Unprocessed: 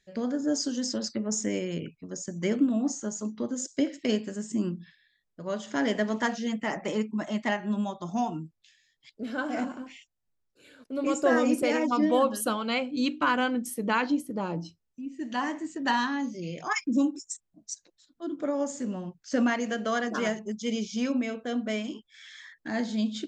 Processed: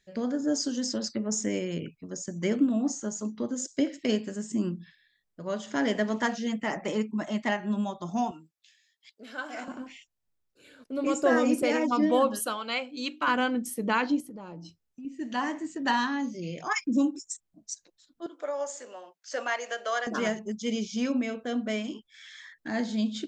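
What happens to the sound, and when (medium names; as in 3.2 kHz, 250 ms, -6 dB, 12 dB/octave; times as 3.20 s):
8.31–9.68 s: high-pass 1.2 kHz 6 dB/octave
12.39–13.28 s: high-pass 720 Hz 6 dB/octave
14.20–15.05 s: compression 5:1, threshold -40 dBFS
18.26–20.07 s: high-pass 500 Hz 24 dB/octave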